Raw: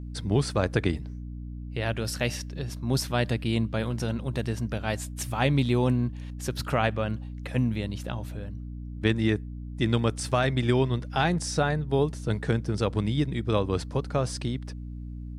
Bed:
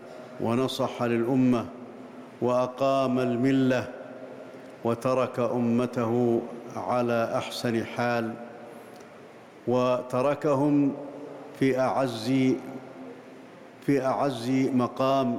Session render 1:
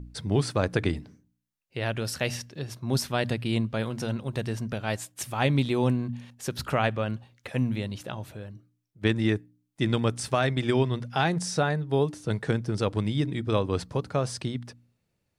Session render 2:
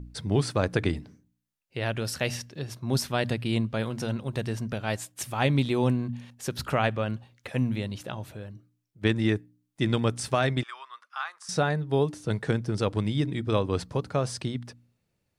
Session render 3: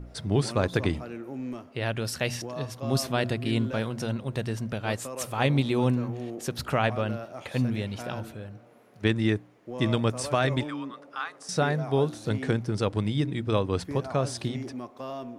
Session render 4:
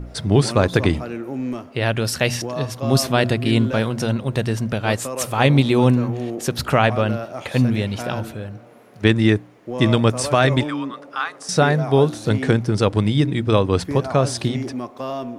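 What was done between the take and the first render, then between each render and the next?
de-hum 60 Hz, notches 5
10.63–11.49 s: ladder high-pass 1.1 kHz, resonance 75%
add bed -13 dB
trim +9 dB; peak limiter -2 dBFS, peak gain reduction 1.5 dB

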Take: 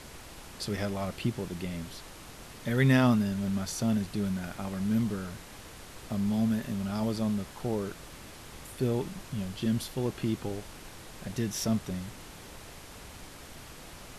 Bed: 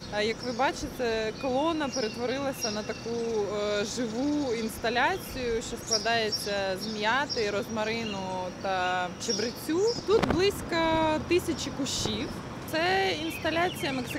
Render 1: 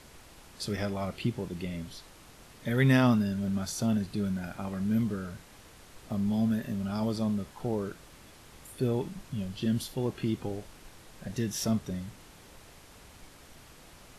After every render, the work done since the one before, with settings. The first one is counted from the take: noise print and reduce 6 dB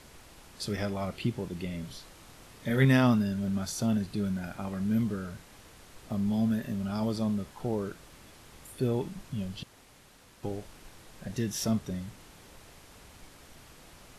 1.80–2.85 s: doubling 30 ms -6.5 dB; 9.63–10.43 s: room tone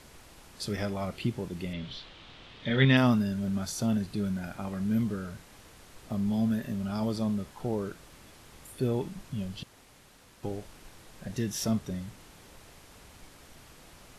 1.73–2.97 s: resonant low-pass 3.4 kHz, resonance Q 3.1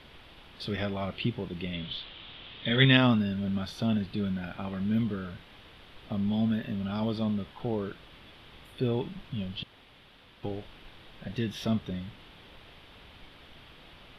resonant high shelf 4.9 kHz -13 dB, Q 3; band-stop 4.1 kHz, Q 24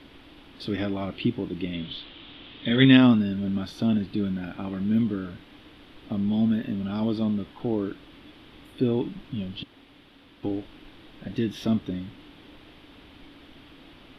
peaking EQ 290 Hz +14 dB 0.53 oct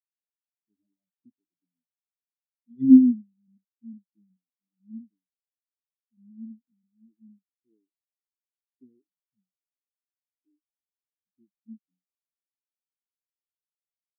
spectral contrast expander 4:1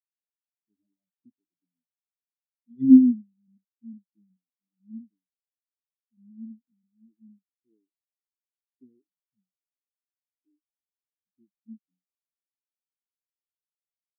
no audible change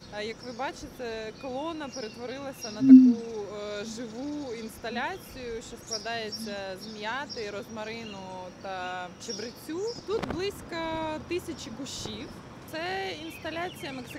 add bed -7 dB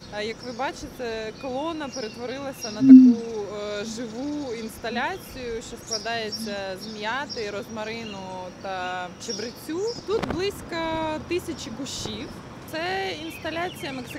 trim +5 dB; peak limiter -1 dBFS, peak gain reduction 2 dB

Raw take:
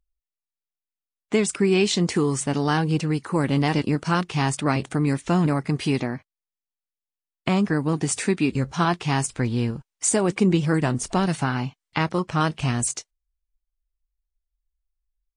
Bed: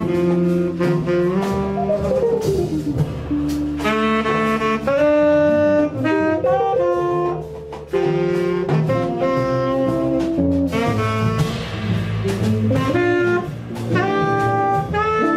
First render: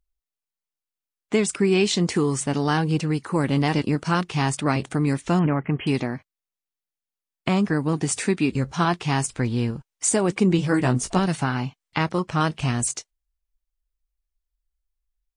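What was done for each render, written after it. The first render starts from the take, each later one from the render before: 5.39–5.87 s: brick-wall FIR low-pass 3.3 kHz; 10.57–11.19 s: doubling 16 ms -5 dB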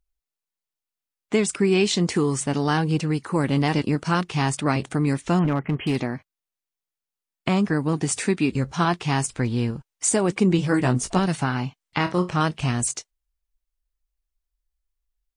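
5.44–5.96 s: hard clipper -17 dBFS; 11.97–12.37 s: flutter echo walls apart 4.8 m, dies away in 0.21 s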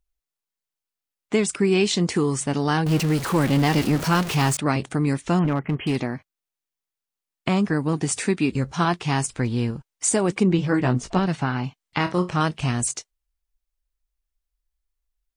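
2.86–4.57 s: jump at every zero crossing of -24.5 dBFS; 10.43–11.64 s: distance through air 100 m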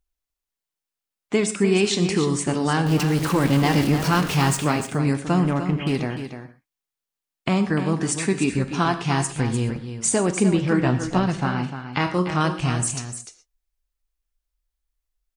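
on a send: delay 299 ms -9.5 dB; on the sum: gated-style reverb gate 150 ms flat, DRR 10 dB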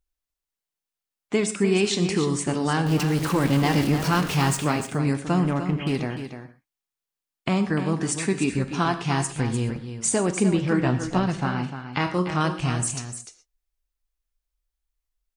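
trim -2 dB

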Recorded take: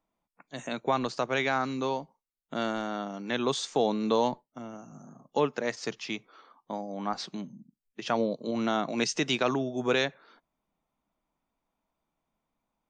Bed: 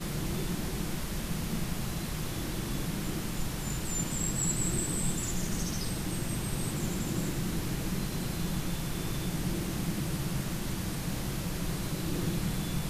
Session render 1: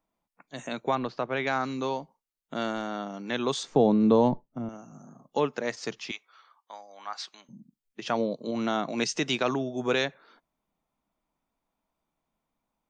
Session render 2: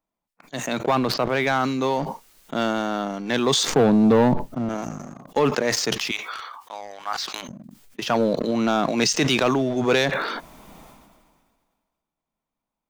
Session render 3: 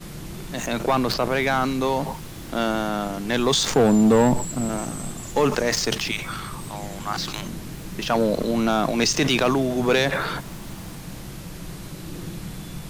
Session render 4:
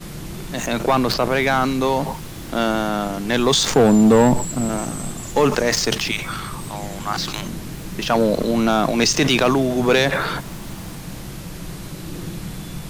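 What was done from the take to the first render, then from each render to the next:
0.95–1.47 s: distance through air 240 m; 3.63–4.69 s: tilt EQ -4 dB/octave; 6.11–7.49 s: high-pass 1.1 kHz
waveshaping leveller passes 2; decay stretcher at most 32 dB/s
add bed -2.5 dB
trim +3.5 dB

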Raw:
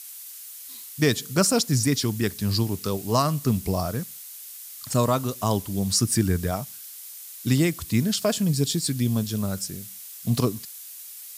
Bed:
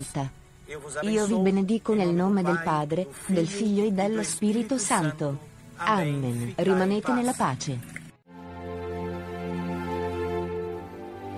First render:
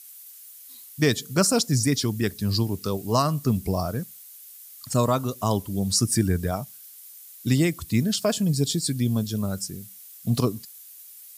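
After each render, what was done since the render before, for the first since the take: noise reduction 8 dB, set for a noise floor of -41 dBFS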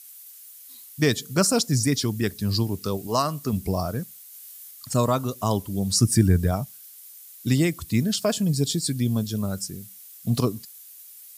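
3.07–3.53 s: bass shelf 170 Hz -11 dB; 4.30–4.71 s: flutter echo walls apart 3.8 m, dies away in 0.32 s; 5.96–6.66 s: bass shelf 190 Hz +7.5 dB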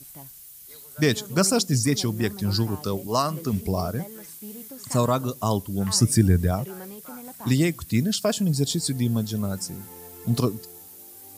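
add bed -16.5 dB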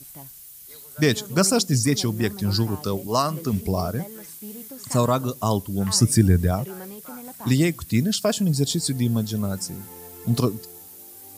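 trim +1.5 dB

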